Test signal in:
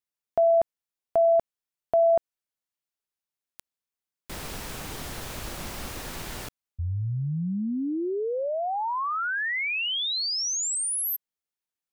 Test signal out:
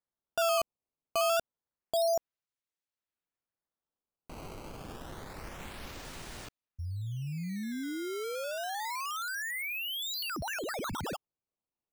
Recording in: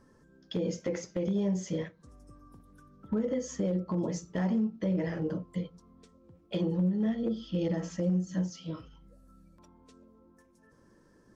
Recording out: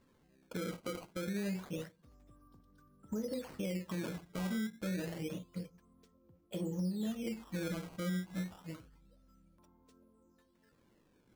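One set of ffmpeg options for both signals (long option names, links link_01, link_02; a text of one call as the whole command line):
ffmpeg -i in.wav -af "acrusher=samples=14:mix=1:aa=0.000001:lfo=1:lforange=22.4:lforate=0.28,volume=-8dB" out.wav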